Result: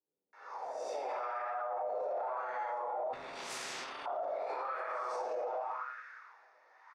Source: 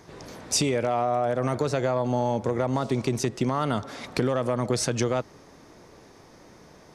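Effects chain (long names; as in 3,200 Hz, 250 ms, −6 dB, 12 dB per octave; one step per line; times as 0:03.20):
peak hold with a rise ahead of every peak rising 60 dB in 0.52 s
high-pass filter 130 Hz 24 dB per octave
soft clipping −19.5 dBFS, distortion −15 dB
multi-voice chorus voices 4, 0.52 Hz, delay 13 ms, depth 3.3 ms
multiband delay without the direct sound lows, highs 330 ms, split 190 Hz
rectangular room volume 2,200 cubic metres, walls mixed, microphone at 4.3 metres
LFO wah 0.87 Hz 590–1,600 Hz, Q 3.7
notch filter 3,100 Hz, Q 13
high-pass filter sweep 670 Hz → 1,600 Hz, 0:05.37–0:06.05
brickwall limiter −31.5 dBFS, peak gain reduction 17.5 dB
0:03.13–0:04.06: every bin compressed towards the loudest bin 4 to 1
level +1.5 dB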